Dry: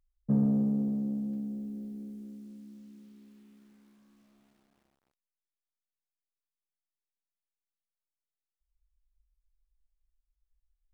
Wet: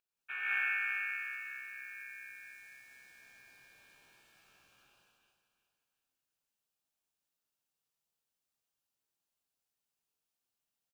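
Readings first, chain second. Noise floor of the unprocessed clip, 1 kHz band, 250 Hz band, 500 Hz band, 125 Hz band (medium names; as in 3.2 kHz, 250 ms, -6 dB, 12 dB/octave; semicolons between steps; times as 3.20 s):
under -85 dBFS, no reading, under -40 dB, -23.5 dB, under -40 dB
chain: high-pass 370 Hz 24 dB/octave; ring modulator 2 kHz; feedback delay 366 ms, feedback 40%, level -10.5 dB; gated-style reverb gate 240 ms rising, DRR -6.5 dB; trim +2 dB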